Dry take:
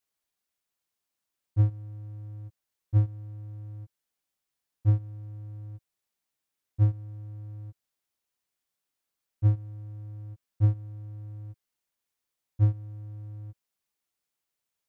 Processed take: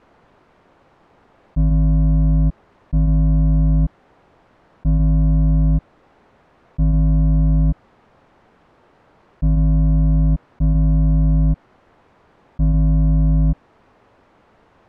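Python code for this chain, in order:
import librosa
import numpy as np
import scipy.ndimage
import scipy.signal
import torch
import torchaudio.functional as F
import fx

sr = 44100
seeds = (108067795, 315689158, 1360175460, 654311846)

y = fx.cycle_switch(x, sr, every=2, mode='inverted')
y = scipy.signal.sosfilt(scipy.signal.butter(2, 1000.0, 'lowpass', fs=sr, output='sos'), y)
y = fx.env_flatten(y, sr, amount_pct=100)
y = y * 10.0 ** (3.5 / 20.0)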